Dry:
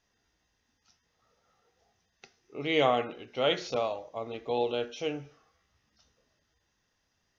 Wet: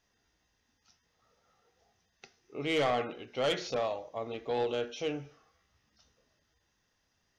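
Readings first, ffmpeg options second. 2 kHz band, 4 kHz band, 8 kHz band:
−2.5 dB, −3.5 dB, can't be measured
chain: -af "asoftclip=type=tanh:threshold=-23dB"

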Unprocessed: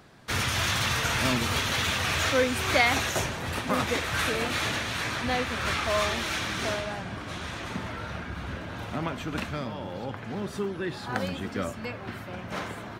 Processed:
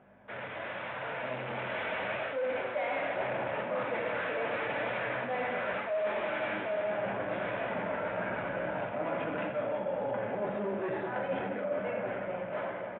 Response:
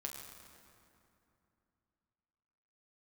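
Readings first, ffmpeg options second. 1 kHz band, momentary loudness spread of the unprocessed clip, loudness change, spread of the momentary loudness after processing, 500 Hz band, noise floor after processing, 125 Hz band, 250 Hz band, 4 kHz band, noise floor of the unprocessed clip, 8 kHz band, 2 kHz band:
−4.0 dB, 12 LU, −5.5 dB, 4 LU, +0.5 dB, −40 dBFS, −13.0 dB, −7.5 dB, −18.0 dB, −40 dBFS, below −40 dB, −7.0 dB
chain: -filter_complex "[0:a]aeval=exprs='val(0)+0.00891*(sin(2*PI*50*n/s)+sin(2*PI*2*50*n/s)/2+sin(2*PI*3*50*n/s)/3+sin(2*PI*4*50*n/s)/4+sin(2*PI*5*50*n/s)/5)':channel_layout=same,aecho=1:1:218|436|654|872:0.0794|0.0413|0.0215|0.0112[link_01];[1:a]atrim=start_sample=2205,asetrate=79380,aresample=44100[link_02];[link_01][link_02]afir=irnorm=-1:irlink=0,flanger=delay=5.1:depth=7.3:regen=-53:speed=0.81:shape=triangular,aresample=8000,asoftclip=type=tanh:threshold=-40dB,aresample=44100,dynaudnorm=framelen=240:gausssize=17:maxgain=13dB,highpass=320,equalizer=frequency=370:width_type=q:width=4:gain=-7,equalizer=frequency=570:width_type=q:width=4:gain=9,equalizer=frequency=1200:width_type=q:width=4:gain=-7,equalizer=frequency=1900:width_type=q:width=4:gain=-4,lowpass=frequency=2200:width=0.5412,lowpass=frequency=2200:width=1.3066,areverse,acompressor=threshold=-39dB:ratio=6,areverse,volume=8.5dB"

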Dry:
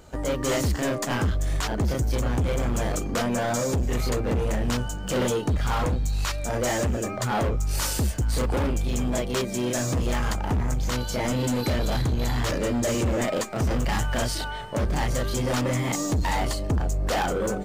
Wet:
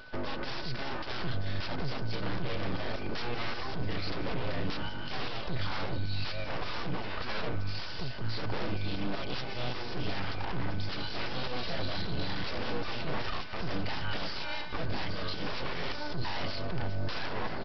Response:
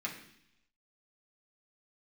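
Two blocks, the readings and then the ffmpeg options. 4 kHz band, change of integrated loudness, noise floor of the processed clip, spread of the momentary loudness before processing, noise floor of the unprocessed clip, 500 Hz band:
−3.5 dB, −10.0 dB, −34 dBFS, 2 LU, −31 dBFS, −11.5 dB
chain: -af "highshelf=frequency=2600:gain=10.5,aecho=1:1:3.4:0.42,areverse,acompressor=mode=upward:threshold=-27dB:ratio=2.5,areverse,alimiter=limit=-18.5dB:level=0:latency=1:release=97,aresample=11025,aeval=exprs='abs(val(0))':channel_layout=same,aresample=44100,aeval=exprs='val(0)+0.00501*sin(2*PI*1500*n/s)':channel_layout=same,aecho=1:1:1031:0.178,volume=-4dB"

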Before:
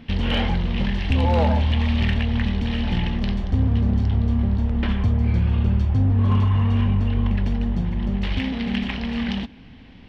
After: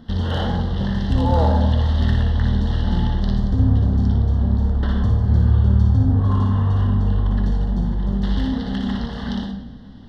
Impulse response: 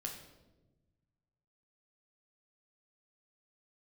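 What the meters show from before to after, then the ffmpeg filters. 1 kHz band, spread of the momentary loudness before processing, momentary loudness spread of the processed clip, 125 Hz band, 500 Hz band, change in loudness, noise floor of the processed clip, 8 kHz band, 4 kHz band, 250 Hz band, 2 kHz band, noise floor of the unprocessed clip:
+2.0 dB, 6 LU, 8 LU, +3.0 dB, +1.5 dB, +2.5 dB, −35 dBFS, can't be measured, −3.0 dB, +1.0 dB, −4.5 dB, −44 dBFS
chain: -filter_complex "[0:a]asuperstop=centerf=2400:order=4:qfactor=1.5,asplit=2[link_01][link_02];[1:a]atrim=start_sample=2205,adelay=58[link_03];[link_02][link_03]afir=irnorm=-1:irlink=0,volume=-1dB[link_04];[link_01][link_04]amix=inputs=2:normalize=0"

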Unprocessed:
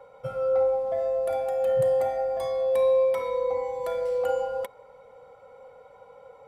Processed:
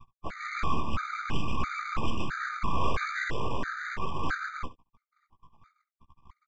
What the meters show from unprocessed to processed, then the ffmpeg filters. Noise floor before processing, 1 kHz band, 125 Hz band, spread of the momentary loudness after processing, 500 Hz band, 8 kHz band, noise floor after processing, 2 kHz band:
−52 dBFS, +1.0 dB, +8.0 dB, 6 LU, −20.5 dB, can't be measured, below −85 dBFS, +12.0 dB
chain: -filter_complex "[0:a]afftfilt=real='re*gte(hypot(re,im),0.0398)':imag='im*gte(hypot(re,im),0.0398)':win_size=1024:overlap=0.75,afftfilt=real='hypot(re,im)*cos(2*PI*random(0))':imag='hypot(re,im)*sin(2*PI*random(1))':win_size=512:overlap=0.75,asplit=2[link_01][link_02];[link_02]adynamicsmooth=sensitivity=6.5:basefreq=920,volume=1dB[link_03];[link_01][link_03]amix=inputs=2:normalize=0,asplit=2[link_04][link_05];[link_05]highpass=frequency=720:poles=1,volume=19dB,asoftclip=type=tanh:threshold=-10dB[link_06];[link_04][link_06]amix=inputs=2:normalize=0,lowpass=frequency=2700:poles=1,volume=-6dB,aecho=1:1:1.1:0.66,acrossover=split=690[link_07][link_08];[link_07]aeval=exprs='val(0)*(1-0.5/2+0.5/2*cos(2*PI*1.1*n/s))':channel_layout=same[link_09];[link_08]aeval=exprs='val(0)*(1-0.5/2-0.5/2*cos(2*PI*1.1*n/s))':channel_layout=same[link_10];[link_09][link_10]amix=inputs=2:normalize=0,flanger=delay=15.5:depth=2.7:speed=0.47,aresample=16000,aeval=exprs='abs(val(0))':channel_layout=same,aresample=44100,aecho=1:1:13|69:0.237|0.158,afftfilt=real='re*gt(sin(2*PI*1.5*pts/sr)*(1-2*mod(floor(b*sr/1024/1200),2)),0)':imag='im*gt(sin(2*PI*1.5*pts/sr)*(1-2*mod(floor(b*sr/1024/1200),2)),0)':win_size=1024:overlap=0.75,volume=2dB"

